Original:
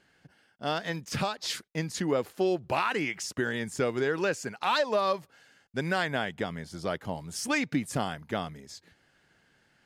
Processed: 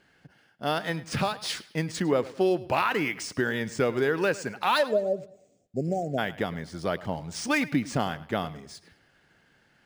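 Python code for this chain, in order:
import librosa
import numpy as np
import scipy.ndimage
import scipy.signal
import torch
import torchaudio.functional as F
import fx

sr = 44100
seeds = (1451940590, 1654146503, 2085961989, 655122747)

y = fx.spec_erase(x, sr, start_s=4.87, length_s=1.31, low_hz=770.0, high_hz=6500.0)
y = fx.echo_bbd(y, sr, ms=104, stages=4096, feedback_pct=36, wet_db=-18.0)
y = np.interp(np.arange(len(y)), np.arange(len(y))[::3], y[::3])
y = y * librosa.db_to_amplitude(3.0)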